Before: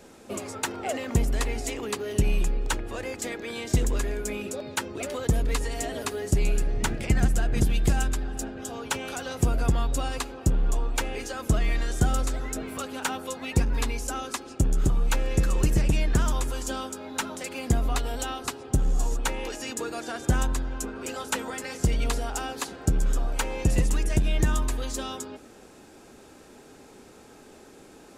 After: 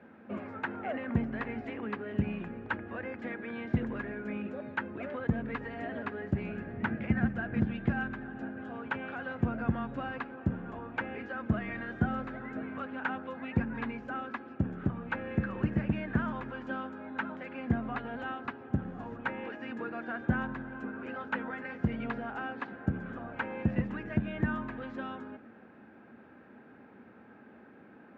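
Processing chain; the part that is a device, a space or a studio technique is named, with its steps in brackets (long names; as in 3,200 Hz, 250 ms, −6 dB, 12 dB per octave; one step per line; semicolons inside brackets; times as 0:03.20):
bass cabinet (loudspeaker in its box 83–2,300 Hz, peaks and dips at 220 Hz +9 dB, 410 Hz −4 dB, 1,600 Hz +7 dB)
level −5.5 dB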